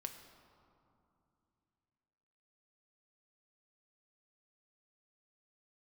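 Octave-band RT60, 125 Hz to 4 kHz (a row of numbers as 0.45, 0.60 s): 3.6, 3.4, 2.7, 2.7, 1.9, 1.3 s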